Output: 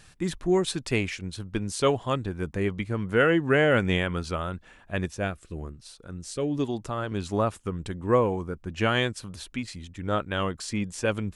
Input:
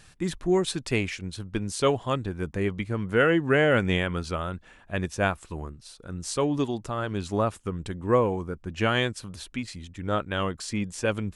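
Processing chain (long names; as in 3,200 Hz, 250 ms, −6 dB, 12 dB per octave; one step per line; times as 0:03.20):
0:05.11–0:07.12: rotating-speaker cabinet horn 1 Hz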